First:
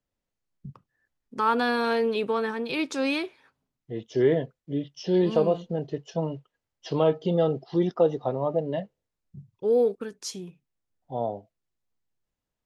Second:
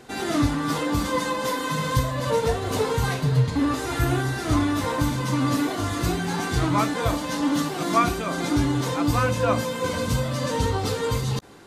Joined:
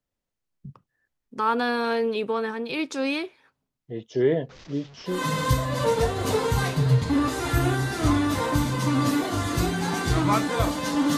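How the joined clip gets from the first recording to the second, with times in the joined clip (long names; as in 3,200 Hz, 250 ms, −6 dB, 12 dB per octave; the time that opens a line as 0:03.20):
first
0:04.49–0:05.23: linear delta modulator 32 kbit/s, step −41 dBFS
0:05.14: continue with second from 0:01.60, crossfade 0.18 s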